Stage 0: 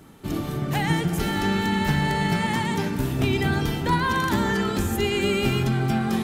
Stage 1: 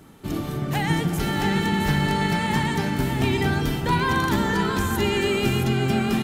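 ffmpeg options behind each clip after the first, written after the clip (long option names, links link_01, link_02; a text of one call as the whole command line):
ffmpeg -i in.wav -af "aecho=1:1:668:0.501" out.wav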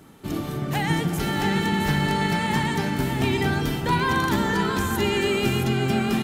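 ffmpeg -i in.wav -af "lowshelf=frequency=77:gain=-5.5" out.wav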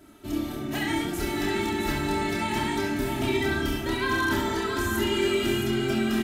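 ffmpeg -i in.wav -filter_complex "[0:a]bandreject=frequency=980:width=8.6,aecho=1:1:3.1:0.88,asplit=2[link_01][link_02];[link_02]aecho=0:1:28|68:0.668|0.501[link_03];[link_01][link_03]amix=inputs=2:normalize=0,volume=-6.5dB" out.wav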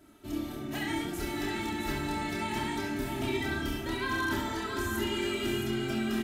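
ffmpeg -i in.wav -af "bandreject=frequency=196.6:width_type=h:width=4,bandreject=frequency=393.2:width_type=h:width=4,volume=-5.5dB" out.wav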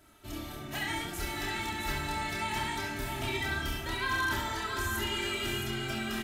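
ffmpeg -i in.wav -af "equalizer=frequency=280:width=0.92:gain=-11,volume=2.5dB" out.wav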